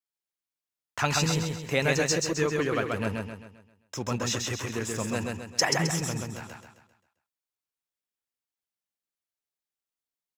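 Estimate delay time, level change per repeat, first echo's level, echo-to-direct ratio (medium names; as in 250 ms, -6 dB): 132 ms, -7.5 dB, -3.0 dB, -2.0 dB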